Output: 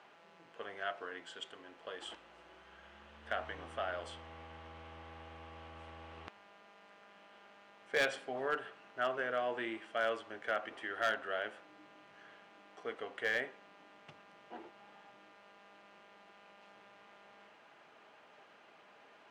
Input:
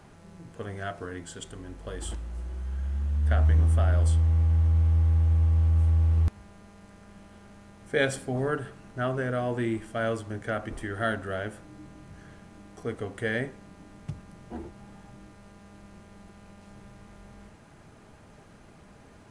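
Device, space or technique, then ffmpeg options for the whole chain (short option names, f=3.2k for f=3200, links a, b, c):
megaphone: -af "highpass=580,lowpass=3.6k,equalizer=f=2.9k:t=o:w=0.51:g=5.5,asoftclip=type=hard:threshold=-22.5dB,volume=-2.5dB"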